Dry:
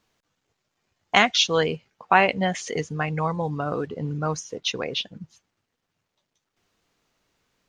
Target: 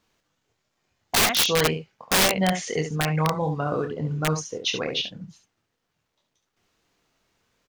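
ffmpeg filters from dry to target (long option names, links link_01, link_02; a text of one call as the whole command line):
ffmpeg -i in.wav -filter_complex "[0:a]asplit=2[link_01][link_02];[link_02]aecho=0:1:26|70:0.447|0.398[link_03];[link_01][link_03]amix=inputs=2:normalize=0,aeval=exprs='(mod(4.47*val(0)+1,2)-1)/4.47':channel_layout=same" out.wav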